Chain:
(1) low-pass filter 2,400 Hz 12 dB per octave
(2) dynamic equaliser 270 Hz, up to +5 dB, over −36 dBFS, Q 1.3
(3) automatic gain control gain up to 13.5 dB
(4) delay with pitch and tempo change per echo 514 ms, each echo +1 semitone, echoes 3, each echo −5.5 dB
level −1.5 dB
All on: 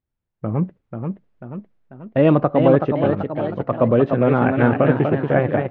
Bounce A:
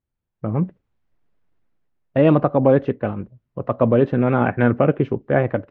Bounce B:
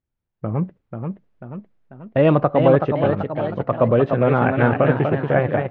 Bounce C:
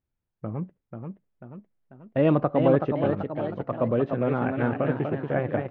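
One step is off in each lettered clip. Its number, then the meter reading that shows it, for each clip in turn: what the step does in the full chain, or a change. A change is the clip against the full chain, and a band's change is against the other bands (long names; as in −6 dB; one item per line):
4, change in momentary loudness spread −4 LU
2, 250 Hz band −3.0 dB
3, change in momentary loudness spread +1 LU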